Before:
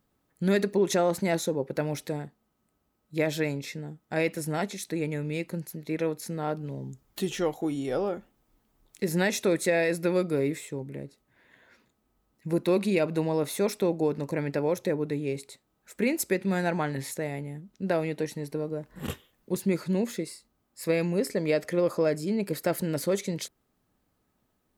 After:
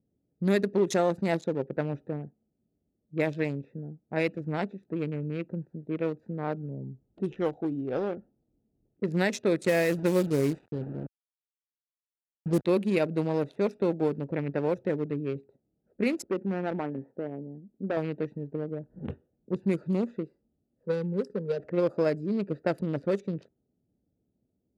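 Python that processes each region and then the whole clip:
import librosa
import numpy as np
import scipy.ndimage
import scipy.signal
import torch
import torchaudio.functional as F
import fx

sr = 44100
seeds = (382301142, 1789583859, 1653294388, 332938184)

y = fx.chain(x, sr, fx.low_shelf(hz=190.0, db=6.5),
    fx.overload_stage(gain_db=15.5),
    fx.quant_dither(seeds[0], bits=6, dither='none'), at=(9.64, 12.65))
y = fx.chain(y, sr, fx.lowpass(hz=1300.0, slope=12),
    fx.low_shelf_res(hz=180.0, db=-6.0, q=1.5),
    fx.clip_hard(threshold_db=-23.0), at=(16.22, 17.97))
y = fx.chain(y, sr, fx.peak_eq(hz=95.0, db=-11.5, octaves=0.59),
    fx.fixed_phaser(hz=450.0, stages=8), at=(20.83, 21.6))
y = fx.wiener(y, sr, points=41)
y = fx.env_lowpass(y, sr, base_hz=620.0, full_db=-21.5)
y = scipy.signal.sosfilt(scipy.signal.butter(2, 67.0, 'highpass', fs=sr, output='sos'), y)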